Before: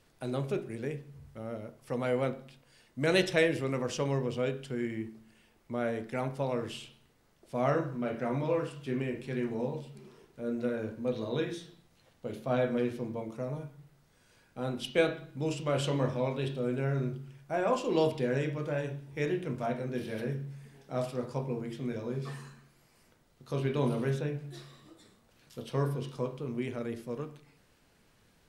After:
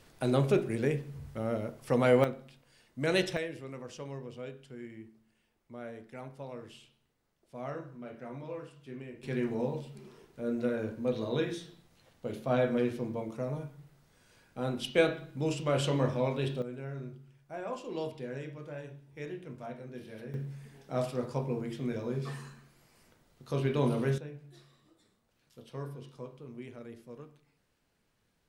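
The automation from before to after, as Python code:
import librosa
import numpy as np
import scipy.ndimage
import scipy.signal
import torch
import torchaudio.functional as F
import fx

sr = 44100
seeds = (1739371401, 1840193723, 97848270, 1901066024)

y = fx.gain(x, sr, db=fx.steps((0.0, 6.5), (2.24, -2.0), (3.37, -11.0), (9.23, 1.0), (16.62, -9.5), (20.34, 1.0), (24.18, -10.0)))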